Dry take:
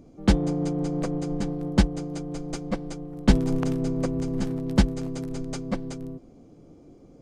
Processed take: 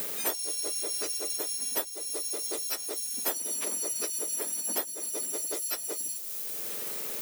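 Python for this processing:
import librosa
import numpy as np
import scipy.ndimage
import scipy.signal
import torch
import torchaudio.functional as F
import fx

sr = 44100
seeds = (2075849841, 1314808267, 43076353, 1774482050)

y = fx.octave_mirror(x, sr, pivot_hz=1700.0)
y = fx.dmg_noise_colour(y, sr, seeds[0], colour='violet', level_db=-48.0)
y = fx.band_squash(y, sr, depth_pct=100)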